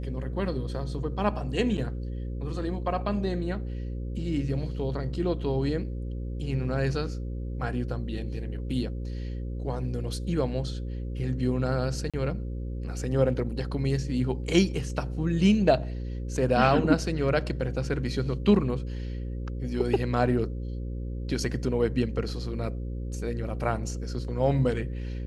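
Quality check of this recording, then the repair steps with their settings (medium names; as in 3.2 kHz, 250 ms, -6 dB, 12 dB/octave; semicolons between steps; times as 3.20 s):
buzz 60 Hz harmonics 9 -33 dBFS
1.77–1.78 s: dropout 8.1 ms
12.10–12.14 s: dropout 36 ms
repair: de-hum 60 Hz, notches 9; interpolate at 1.77 s, 8.1 ms; interpolate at 12.10 s, 36 ms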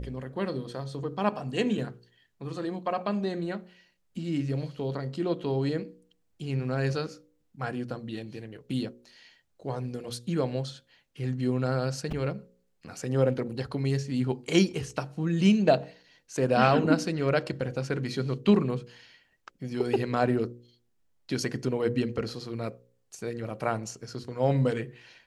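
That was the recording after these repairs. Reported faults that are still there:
nothing left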